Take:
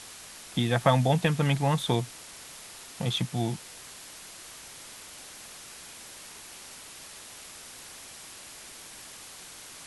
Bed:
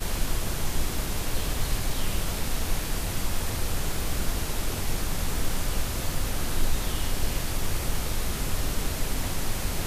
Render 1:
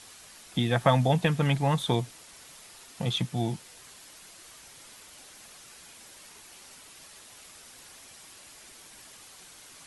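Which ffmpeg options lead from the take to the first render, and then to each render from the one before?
ffmpeg -i in.wav -af "afftdn=noise_reduction=6:noise_floor=-46" out.wav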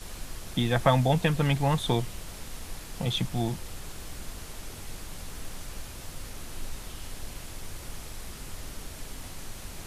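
ffmpeg -i in.wav -i bed.wav -filter_complex "[1:a]volume=-12.5dB[link_01];[0:a][link_01]amix=inputs=2:normalize=0" out.wav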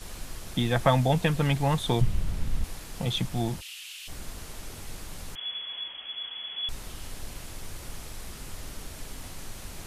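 ffmpeg -i in.wav -filter_complex "[0:a]asettb=1/sr,asplit=3[link_01][link_02][link_03];[link_01]atrim=end=2.014[link_04];[link_02]atrim=start=2.01:end=2.64,asetpts=PTS-STARTPTS,afade=type=in:duration=0.004:curve=qsin,afade=type=out:start_time=0.626:duration=0.004:curve=qsin,bass=frequency=250:gain=14,treble=frequency=4000:gain=-5[link_05];[link_03]atrim=start=2.636[link_06];[link_04][link_05]acrossfade=duration=0.004:curve1=hsin:curve2=qsin[link_07];[link_07][link_06]acrossfade=duration=0.004:curve1=qsin:curve2=hsin,asplit=3[link_08][link_09][link_10];[link_08]afade=type=out:start_time=3.6:duration=0.02[link_11];[link_09]highpass=frequency=2800:width_type=q:width=4.8,afade=type=in:start_time=3.6:duration=0.02,afade=type=out:start_time=4.07:duration=0.02[link_12];[link_10]afade=type=in:start_time=4.07:duration=0.02[link_13];[link_11][link_12][link_13]amix=inputs=3:normalize=0,asettb=1/sr,asplit=3[link_14][link_15][link_16];[link_14]atrim=end=5.354[link_17];[link_15]atrim=start=5.35:end=6.69,asetpts=PTS-STARTPTS,afade=type=in:duration=0.004:curve=qsin,afade=type=out:start_time=1.336:duration=0.004:curve=qsin,lowpass=frequency=2900:width_type=q:width=0.5098,lowpass=frequency=2900:width_type=q:width=0.6013,lowpass=frequency=2900:width_type=q:width=0.9,lowpass=frequency=2900:width_type=q:width=2.563,afreqshift=-3400[link_18];[link_16]atrim=start=6.686[link_19];[link_17][link_18]acrossfade=duration=0.004:curve1=hsin:curve2=qsin[link_20];[link_20][link_19]acrossfade=duration=0.004:curve1=qsin:curve2=hsin" out.wav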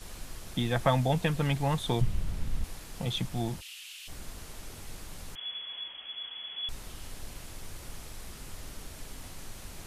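ffmpeg -i in.wav -af "volume=-3.5dB" out.wav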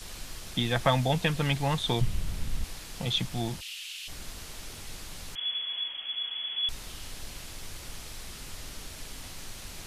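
ffmpeg -i in.wav -filter_complex "[0:a]acrossover=split=5600[link_01][link_02];[link_02]acompressor=threshold=-58dB:ratio=4:attack=1:release=60[link_03];[link_01][link_03]amix=inputs=2:normalize=0,highshelf=frequency=2500:gain=10.5" out.wav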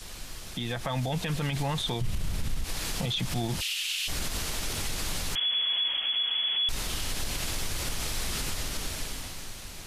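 ffmpeg -i in.wav -af "dynaudnorm=framelen=110:gausssize=21:maxgain=14dB,alimiter=limit=-21.5dB:level=0:latency=1:release=95" out.wav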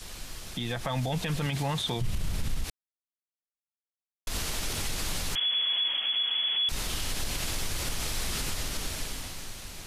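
ffmpeg -i in.wav -filter_complex "[0:a]asettb=1/sr,asplit=3[link_01][link_02][link_03];[link_01]atrim=end=1.464[link_04];[link_02]atrim=start=1.46:end=1.97,asetpts=PTS-STARTPTS,afade=type=in:duration=0.004:curve=qsin,afade=type=out:start_time=0.506:duration=0.004:curve=qsin,highpass=65[link_05];[link_03]atrim=start=1.966[link_06];[link_04][link_05]acrossfade=duration=0.004:curve1=hsin:curve2=qsin[link_07];[link_07][link_06]acrossfade=duration=0.004:curve1=qsin:curve2=hsin,asettb=1/sr,asplit=3[link_08][link_09][link_10];[link_08]atrim=end=5.484[link_11];[link_09]atrim=start=5.48:end=6.72,asetpts=PTS-STARTPTS,afade=type=in:duration=0.004:curve=qsin,afade=type=out:start_time=1.236:duration=0.004:curve=qsin,highpass=100[link_12];[link_10]atrim=start=6.716[link_13];[link_11][link_12]acrossfade=duration=0.004:curve1=hsin:curve2=qsin[link_14];[link_14][link_13]acrossfade=duration=0.004:curve1=qsin:curve2=hsin,asplit=3[link_15][link_16][link_17];[link_15]atrim=end=2.7,asetpts=PTS-STARTPTS,afade=type=out:start_time=2.696:duration=0.004:curve=hsin[link_18];[link_16]atrim=start=2.7:end=4.27,asetpts=PTS-STARTPTS,volume=0[link_19];[link_17]atrim=start=4.27,asetpts=PTS-STARTPTS,afade=type=in:duration=0.004:curve=hsin[link_20];[link_18][link_19][link_20]concat=n=3:v=0:a=1" out.wav

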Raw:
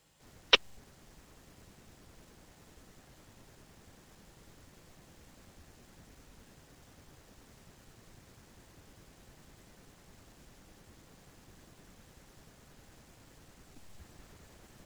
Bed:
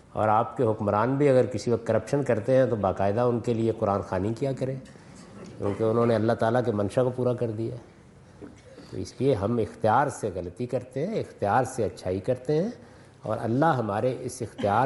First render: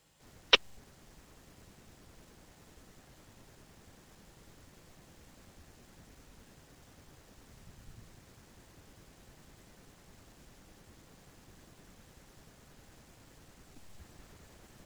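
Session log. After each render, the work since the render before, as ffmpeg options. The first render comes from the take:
ffmpeg -i in.wav -filter_complex "[0:a]asettb=1/sr,asplit=3[link_01][link_02][link_03];[link_01]atrim=end=7.364[link_04];[link_02]atrim=start=7.36:end=8.07,asetpts=PTS-STARTPTS,afade=type=in:duration=0.004:curve=qsin,afade=type=out:start_time=0.706:duration=0.004:curve=qsin,asubboost=boost=9.5:cutoff=220[link_05];[link_03]atrim=start=8.066[link_06];[link_04][link_05]acrossfade=duration=0.004:curve1=hsin:curve2=qsin[link_07];[link_07][link_06]acrossfade=duration=0.004:curve1=qsin:curve2=hsin" out.wav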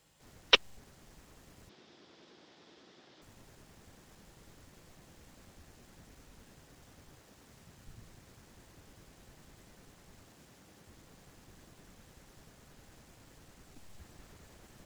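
ffmpeg -i in.wav -filter_complex "[0:a]asettb=1/sr,asplit=3[link_01][link_02][link_03];[link_01]atrim=end=1.694[link_04];[link_02]atrim=start=1.69:end=3.22,asetpts=PTS-STARTPTS,afade=type=in:duration=0.004:curve=qsin,afade=type=out:start_time=1.526:duration=0.004:curve=qsin,highpass=230,equalizer=frequency=350:width_type=q:width=4:gain=6,equalizer=frequency=3500:width_type=q:width=4:gain=7,equalizer=frequency=5100:width_type=q:width=4:gain=4,lowpass=frequency=5500:width=0.5412,lowpass=frequency=5500:width=1.3066[link_05];[link_03]atrim=start=3.216[link_06];[link_04][link_05]acrossfade=duration=0.004:curve1=hsin:curve2=qsin[link_07];[link_07][link_06]acrossfade=duration=0.004:curve1=qsin:curve2=hsin,asettb=1/sr,asplit=3[link_08][link_09][link_10];[link_08]atrim=end=7.184[link_11];[link_09]atrim=start=7.18:end=7.86,asetpts=PTS-STARTPTS,afade=type=in:duration=0.004:curve=qsin,afade=type=out:start_time=0.676:duration=0.004:curve=qsin,highpass=frequency=100:poles=1[link_12];[link_10]atrim=start=7.856[link_13];[link_11][link_12]acrossfade=duration=0.004:curve1=hsin:curve2=qsin[link_14];[link_14][link_13]acrossfade=duration=0.004:curve1=qsin:curve2=hsin,asettb=1/sr,asplit=3[link_15][link_16][link_17];[link_15]atrim=end=10.274[link_18];[link_16]atrim=start=10.27:end=10.87,asetpts=PTS-STARTPTS,afade=type=in:duration=0.004:curve=qsin,afade=type=out:start_time=0.596:duration=0.004:curve=qsin,highpass=84[link_19];[link_17]atrim=start=10.866[link_20];[link_18][link_19]acrossfade=duration=0.004:curve1=hsin:curve2=qsin[link_21];[link_21][link_20]acrossfade=duration=0.004:curve1=qsin:curve2=hsin" out.wav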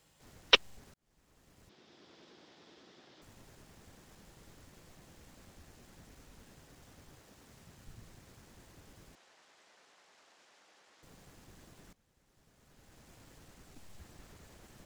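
ffmpeg -i in.wav -filter_complex "[0:a]asettb=1/sr,asplit=3[link_01][link_02][link_03];[link_01]atrim=end=9.154[link_04];[link_02]atrim=start=9.15:end=11.03,asetpts=PTS-STARTPTS,afade=type=in:duration=0.004:curve=qsin,afade=type=out:start_time=1.876:duration=0.004:curve=qsin,highpass=650,lowpass=5900[link_05];[link_03]atrim=start=11.026[link_06];[link_04][link_05]acrossfade=duration=0.004:curve1=hsin:curve2=qsin[link_07];[link_07][link_06]acrossfade=duration=0.004:curve1=qsin:curve2=hsin,asplit=3[link_08][link_09][link_10];[link_08]atrim=end=0.94,asetpts=PTS-STARTPTS,afade=type=out:start_time=0.936:duration=0.004:curve=hsin[link_11];[link_09]atrim=start=0.94:end=11.93,asetpts=PTS-STARTPTS,afade=type=in:duration=1.18,afade=type=out:start_time=10.986:duration=0.004:curve=hsin:silence=0.133352[link_12];[link_10]atrim=start=11.93,asetpts=PTS-STARTPTS,afade=type=in:duration=1.2:curve=qua:silence=0.133352[link_13];[link_11][link_12][link_13]concat=n=3:v=0:a=1" out.wav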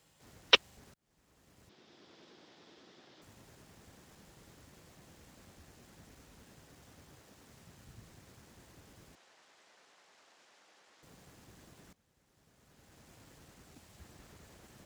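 ffmpeg -i in.wav -af "highpass=53" out.wav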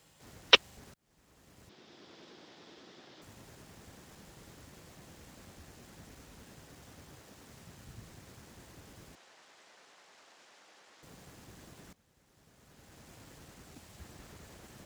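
ffmpeg -i in.wav -af "volume=4.5dB,alimiter=limit=-3dB:level=0:latency=1" out.wav

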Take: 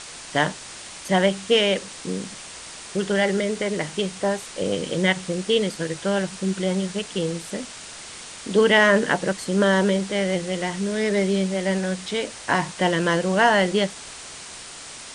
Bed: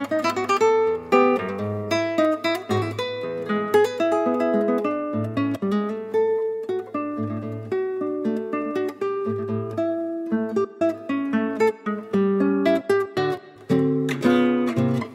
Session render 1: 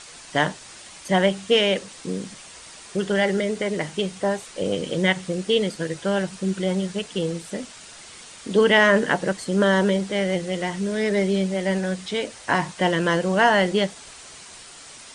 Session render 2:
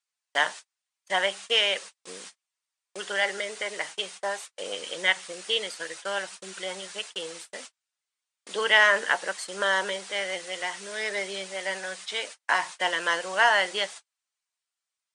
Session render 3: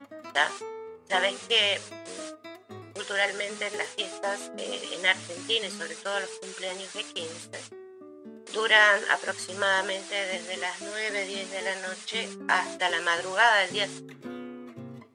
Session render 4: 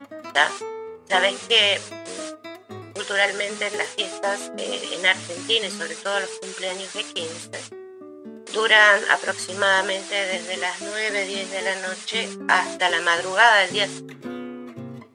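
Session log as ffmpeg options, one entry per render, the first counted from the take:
ffmpeg -i in.wav -af "afftdn=noise_reduction=6:noise_floor=-39" out.wav
ffmpeg -i in.wav -af "agate=range=-45dB:threshold=-34dB:ratio=16:detection=peak,highpass=900" out.wav
ffmpeg -i in.wav -i bed.wav -filter_complex "[1:a]volume=-21dB[link_01];[0:a][link_01]amix=inputs=2:normalize=0" out.wav
ffmpeg -i in.wav -af "volume=6dB,alimiter=limit=-3dB:level=0:latency=1" out.wav

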